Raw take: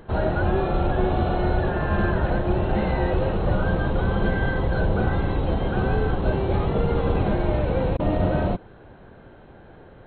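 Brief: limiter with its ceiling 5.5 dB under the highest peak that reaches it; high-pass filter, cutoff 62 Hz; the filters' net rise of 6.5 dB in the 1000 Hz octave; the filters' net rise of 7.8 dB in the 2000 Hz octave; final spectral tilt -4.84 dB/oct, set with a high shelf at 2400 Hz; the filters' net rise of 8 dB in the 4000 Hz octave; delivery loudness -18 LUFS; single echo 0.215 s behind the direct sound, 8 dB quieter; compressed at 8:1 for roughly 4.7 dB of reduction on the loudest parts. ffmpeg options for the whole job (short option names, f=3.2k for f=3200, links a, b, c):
-af "highpass=62,equalizer=f=1k:t=o:g=7,equalizer=f=2k:t=o:g=5,highshelf=f=2.4k:g=4.5,equalizer=f=4k:t=o:g=4,acompressor=threshold=-21dB:ratio=8,alimiter=limit=-18.5dB:level=0:latency=1,aecho=1:1:215:0.398,volume=9dB"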